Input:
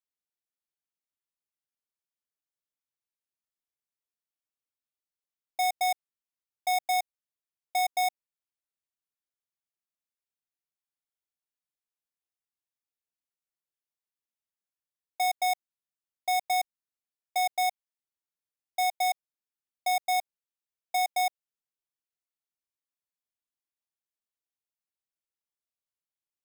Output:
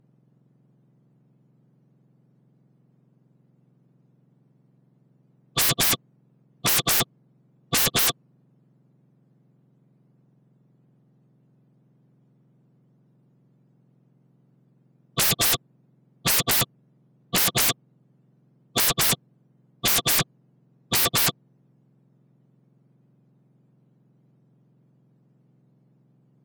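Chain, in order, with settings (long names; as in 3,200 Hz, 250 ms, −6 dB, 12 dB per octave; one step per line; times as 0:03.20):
frequency axis turned over on the octave scale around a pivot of 1,600 Hz
sine wavefolder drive 20 dB, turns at −14 dBFS
level −3 dB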